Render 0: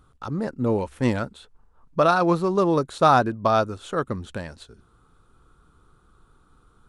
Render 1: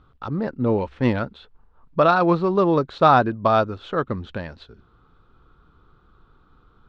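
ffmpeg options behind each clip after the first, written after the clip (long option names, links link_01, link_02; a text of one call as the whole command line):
ffmpeg -i in.wav -af "lowpass=frequency=4200:width=0.5412,lowpass=frequency=4200:width=1.3066,volume=2dB" out.wav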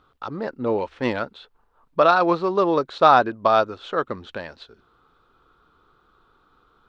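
ffmpeg -i in.wav -af "bass=frequency=250:gain=-13,treble=frequency=4000:gain=4,volume=1dB" out.wav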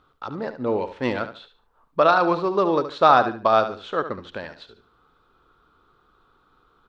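ffmpeg -i in.wav -af "aecho=1:1:72|144|216:0.282|0.0761|0.0205,volume=-1dB" out.wav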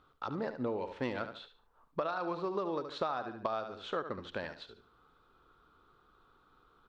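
ffmpeg -i in.wav -af "acompressor=threshold=-26dB:ratio=16,volume=-5dB" out.wav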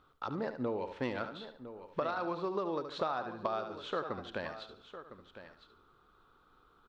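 ffmpeg -i in.wav -af "aecho=1:1:1007:0.237" out.wav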